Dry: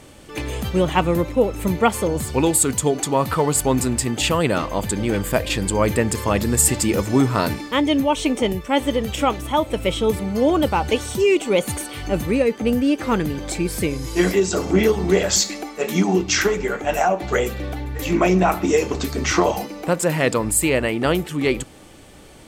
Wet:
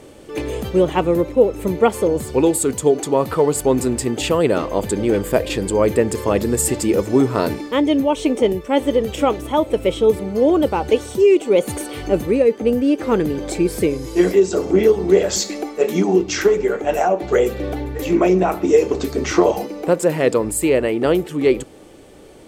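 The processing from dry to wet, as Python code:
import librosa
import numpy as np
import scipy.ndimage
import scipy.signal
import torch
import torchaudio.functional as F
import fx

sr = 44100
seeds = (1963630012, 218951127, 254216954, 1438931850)

p1 = fx.peak_eq(x, sr, hz=420.0, db=10.5, octaves=1.3)
p2 = fx.rider(p1, sr, range_db=10, speed_s=0.5)
p3 = p1 + F.gain(torch.from_numpy(p2), -2.5).numpy()
y = F.gain(torch.from_numpy(p3), -9.0).numpy()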